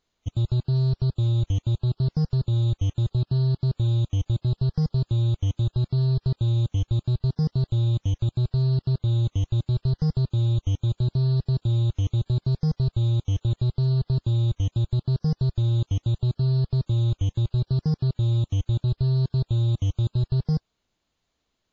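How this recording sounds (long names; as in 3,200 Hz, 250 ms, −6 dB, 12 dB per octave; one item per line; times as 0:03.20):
WMA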